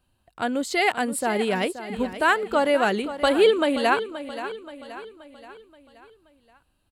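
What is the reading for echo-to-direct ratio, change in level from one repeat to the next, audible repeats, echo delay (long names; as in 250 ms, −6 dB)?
−11.5 dB, −6.0 dB, 4, 527 ms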